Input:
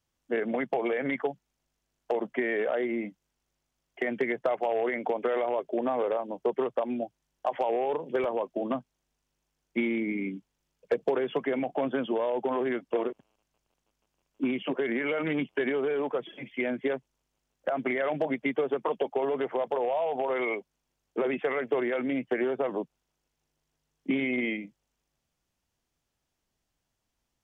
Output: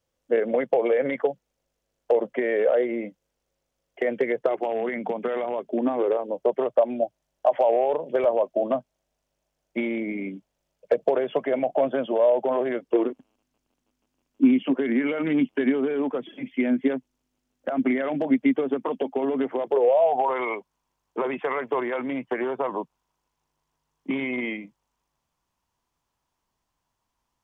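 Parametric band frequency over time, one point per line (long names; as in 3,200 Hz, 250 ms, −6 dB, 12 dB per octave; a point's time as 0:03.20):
parametric band +12.5 dB 0.54 octaves
0:04.35 520 Hz
0:04.89 190 Hz
0:05.53 190 Hz
0:06.48 610 Hz
0:12.71 610 Hz
0:13.11 260 Hz
0:19.50 260 Hz
0:20.32 1,000 Hz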